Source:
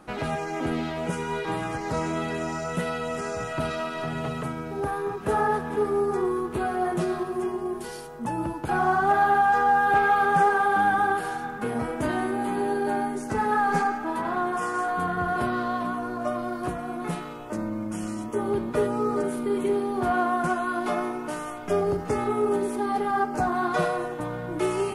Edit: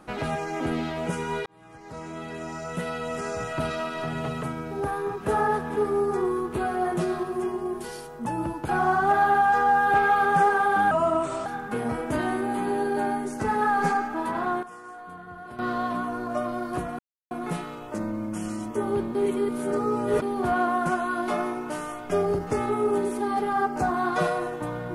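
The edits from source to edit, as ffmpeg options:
ffmpeg -i in.wav -filter_complex "[0:a]asplit=9[link_01][link_02][link_03][link_04][link_05][link_06][link_07][link_08][link_09];[link_01]atrim=end=1.46,asetpts=PTS-STARTPTS,afade=type=out:start_time=1.456:duration=0.004:curve=hsin[link_10];[link_02]atrim=start=1.46:end=10.914,asetpts=PTS-STARTPTS,afade=type=in:duration=1.84[link_11];[link_03]atrim=start=10.91:end=11.36,asetpts=PTS-STARTPTS,asetrate=36162,aresample=44100,atrim=end_sample=24201,asetpts=PTS-STARTPTS[link_12];[link_04]atrim=start=11.356:end=14.53,asetpts=PTS-STARTPTS,afade=type=out:start_time=2.984:duration=0.19:curve=log:silence=0.177828[link_13];[link_05]atrim=start=14.53:end=15.49,asetpts=PTS-STARTPTS,volume=-15dB[link_14];[link_06]atrim=start=15.49:end=16.89,asetpts=PTS-STARTPTS,afade=type=in:duration=0.19:curve=log:silence=0.177828,afade=type=out:start_time=1.396:duration=0.004:curve=hsin,apad=pad_dur=0.32[link_15];[link_07]atrim=start=16.89:end=18.732,asetpts=PTS-STARTPTS,afade=type=in:duration=0.004:curve=hsin[link_16];[link_08]atrim=start=18.728:end=19.802,asetpts=PTS-STARTPTS,areverse[link_17];[link_09]atrim=start=19.798[link_18];[link_10][link_11]concat=n=2:v=0:a=1[link_19];[link_19][link_12]acrossfade=duration=0.004:curve1=hsin:curve2=hsin[link_20];[link_13][link_14][link_15][link_16]concat=n=4:v=0:a=1[link_21];[link_20][link_21]acrossfade=duration=0.004:curve1=hsin:curve2=hsin[link_22];[link_22][link_17]acrossfade=duration=0.004:curve1=hsin:curve2=hsin[link_23];[link_23][link_18]acrossfade=duration=0.004:curve1=hsin:curve2=hsin" out.wav

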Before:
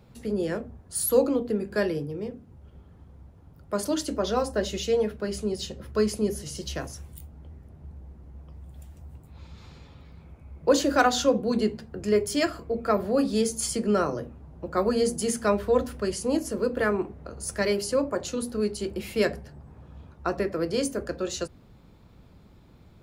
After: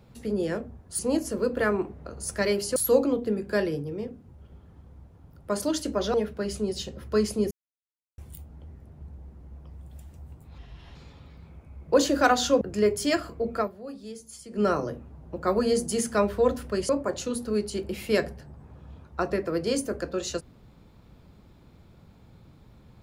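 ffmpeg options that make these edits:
ffmpeg -i in.wav -filter_complex "[0:a]asplit=12[link_01][link_02][link_03][link_04][link_05][link_06][link_07][link_08][link_09][link_10][link_11][link_12];[link_01]atrim=end=0.992[link_13];[link_02]atrim=start=16.188:end=17.962[link_14];[link_03]atrim=start=0.988:end=4.372[link_15];[link_04]atrim=start=4.968:end=6.34,asetpts=PTS-STARTPTS,afade=type=out:start_time=1.368:duration=0.004:curve=hsin[link_16];[link_05]atrim=start=6.34:end=7.01,asetpts=PTS-STARTPTS,volume=0[link_17];[link_06]atrim=start=7.01:end=9.414,asetpts=PTS-STARTPTS,afade=type=in:duration=0.004:curve=hsin[link_18];[link_07]atrim=start=9.41:end=9.7,asetpts=PTS-STARTPTS,asetrate=34398,aresample=44100,atrim=end_sample=16396,asetpts=PTS-STARTPTS[link_19];[link_08]atrim=start=9.696:end=11.362[link_20];[link_09]atrim=start=11.908:end=13,asetpts=PTS-STARTPTS,afade=type=out:start_time=0.952:duration=0.14:silence=0.158489[link_21];[link_10]atrim=start=13:end=13.8,asetpts=PTS-STARTPTS,volume=-16dB[link_22];[link_11]atrim=start=13.8:end=16.192,asetpts=PTS-STARTPTS,afade=type=in:duration=0.14:silence=0.158489[link_23];[link_12]atrim=start=17.958[link_24];[link_13][link_14]acrossfade=duration=0.004:curve1=hsin:curve2=hsin[link_25];[link_25][link_15]acrossfade=duration=0.004:curve1=hsin:curve2=hsin[link_26];[link_16][link_17][link_18]concat=n=3:v=0:a=1[link_27];[link_26][link_27]acrossfade=duration=0.004:curve1=hsin:curve2=hsin[link_28];[link_28][link_19]acrossfade=duration=0.004:curve1=hsin:curve2=hsin[link_29];[link_29][link_20]acrossfade=duration=0.004:curve1=hsin:curve2=hsin[link_30];[link_21][link_22][link_23]concat=n=3:v=0:a=1[link_31];[link_30][link_31]acrossfade=duration=0.004:curve1=hsin:curve2=hsin[link_32];[link_32][link_24]acrossfade=duration=0.004:curve1=hsin:curve2=hsin" out.wav

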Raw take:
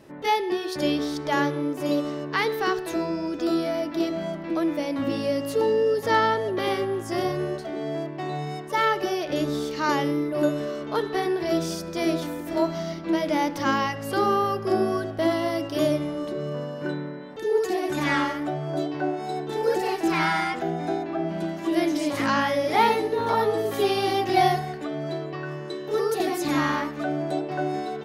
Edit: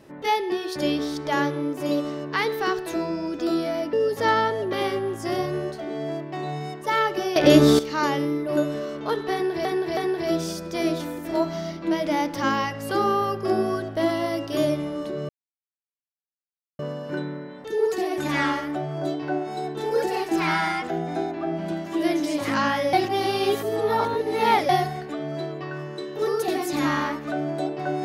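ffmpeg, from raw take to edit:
ffmpeg -i in.wav -filter_complex "[0:a]asplit=9[link_01][link_02][link_03][link_04][link_05][link_06][link_07][link_08][link_09];[link_01]atrim=end=3.932[link_10];[link_02]atrim=start=5.788:end=9.222[link_11];[link_03]atrim=start=9.218:end=9.652,asetpts=PTS-STARTPTS,volume=12dB[link_12];[link_04]atrim=start=9.648:end=11.512[link_13];[link_05]atrim=start=11.188:end=11.512[link_14];[link_06]atrim=start=11.188:end=16.51,asetpts=PTS-STARTPTS,afade=type=out:start_time=5.318:duration=0.004:curve=hsin,apad=pad_dur=1.5[link_15];[link_07]atrim=start=16.51:end=22.652,asetpts=PTS-STARTPTS,afade=type=in:duration=0.004:curve=hsin[link_16];[link_08]atrim=start=22.648:end=24.412,asetpts=PTS-STARTPTS,areverse[link_17];[link_09]atrim=start=24.408[link_18];[link_10][link_11]acrossfade=duration=0.004:curve1=hsin:curve2=hsin[link_19];[link_19][link_12]acrossfade=duration=0.004:curve1=hsin:curve2=hsin[link_20];[link_20][link_13]acrossfade=duration=0.004:curve1=hsin:curve2=hsin[link_21];[link_21][link_14]acrossfade=duration=0.004:curve1=hsin:curve2=hsin[link_22];[link_15][link_16]concat=n=2:v=0:a=1[link_23];[link_22][link_23]acrossfade=duration=0.004:curve1=hsin:curve2=hsin[link_24];[link_24][link_17]acrossfade=duration=0.004:curve1=hsin:curve2=hsin[link_25];[link_25][link_18]acrossfade=duration=0.004:curve1=hsin:curve2=hsin" out.wav

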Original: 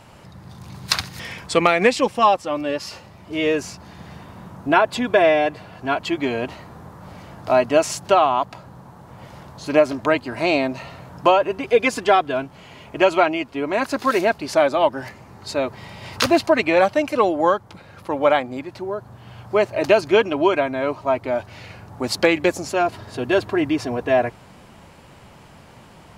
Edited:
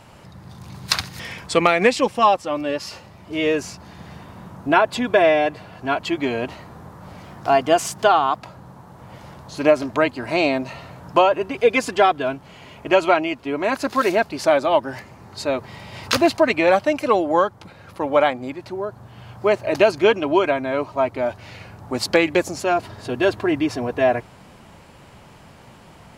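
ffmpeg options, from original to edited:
ffmpeg -i in.wav -filter_complex "[0:a]asplit=3[link_01][link_02][link_03];[link_01]atrim=end=7.244[link_04];[link_02]atrim=start=7.24:end=8.49,asetpts=PTS-STARTPTS,asetrate=47628,aresample=44100[link_05];[link_03]atrim=start=8.486[link_06];[link_04][link_05]acrossfade=duration=0.004:curve1=hsin:curve2=hsin[link_07];[link_07][link_06]acrossfade=duration=0.004:curve1=hsin:curve2=hsin" out.wav

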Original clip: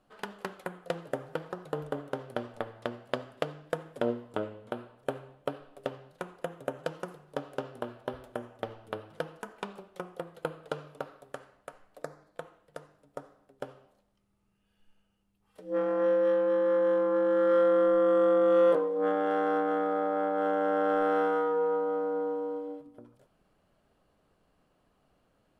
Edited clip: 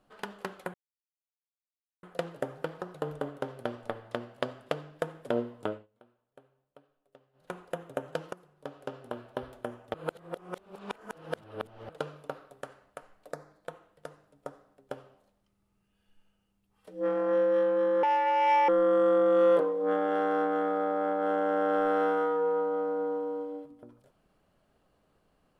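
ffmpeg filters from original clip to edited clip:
ffmpeg -i in.wav -filter_complex "[0:a]asplit=9[link_01][link_02][link_03][link_04][link_05][link_06][link_07][link_08][link_09];[link_01]atrim=end=0.74,asetpts=PTS-STARTPTS,afade=type=out:start_time=0.736:duration=0.004:curve=hsin,apad=pad_dur=1.29[link_10];[link_02]atrim=start=0.74:end=4.58,asetpts=PTS-STARTPTS,afade=type=in:duration=0.004:curve=hsin,afade=type=out:start_time=3.64:duration=0.2:silence=0.0668344[link_11];[link_03]atrim=start=4.58:end=6.04,asetpts=PTS-STARTPTS,volume=-23.5dB[link_12];[link_04]atrim=start=6.04:end=7.04,asetpts=PTS-STARTPTS,afade=type=in:duration=0.2:silence=0.0668344,afade=type=out:start_time=0.996:duration=0.004:curve=hsin:silence=0.223872[link_13];[link_05]atrim=start=7.04:end=8.652,asetpts=PTS-STARTPTS,afade=type=in:duration=0.97:silence=0.223872[link_14];[link_06]atrim=start=8.648:end=10.602,asetpts=PTS-STARTPTS,areverse[link_15];[link_07]atrim=start=10.598:end=16.744[link_16];[link_08]atrim=start=16.74:end=17.84,asetpts=PTS-STARTPTS,asetrate=74088,aresample=44100[link_17];[link_09]atrim=start=17.836[link_18];[link_10][link_11][link_12][link_13][link_14]concat=n=5:v=0:a=1[link_19];[link_19][link_15]acrossfade=duration=0.004:curve1=hsin:curve2=hsin[link_20];[link_20][link_16]acrossfade=duration=0.004:curve1=hsin:curve2=hsin[link_21];[link_21][link_17]acrossfade=duration=0.004:curve1=hsin:curve2=hsin[link_22];[link_22][link_18]acrossfade=duration=0.004:curve1=hsin:curve2=hsin" out.wav

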